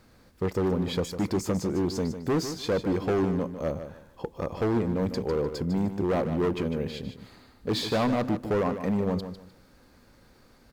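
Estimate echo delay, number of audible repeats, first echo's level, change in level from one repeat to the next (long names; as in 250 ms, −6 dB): 151 ms, 3, −10.0 dB, −12.5 dB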